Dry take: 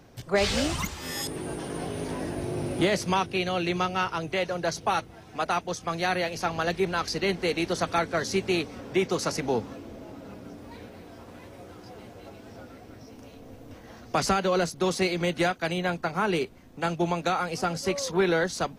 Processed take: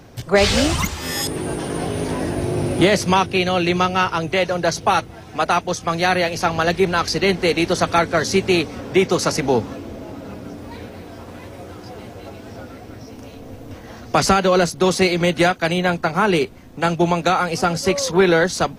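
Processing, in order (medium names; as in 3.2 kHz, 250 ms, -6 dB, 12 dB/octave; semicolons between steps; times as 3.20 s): peaking EQ 89 Hz +3 dB; trim +9 dB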